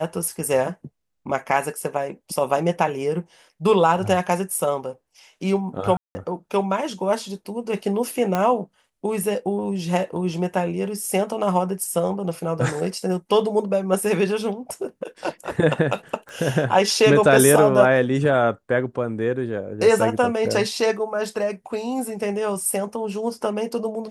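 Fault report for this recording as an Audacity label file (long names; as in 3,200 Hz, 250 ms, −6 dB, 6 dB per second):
5.970000	6.150000	drop-out 180 ms
8.350000	8.350000	click −9 dBFS
16.290000	16.290000	click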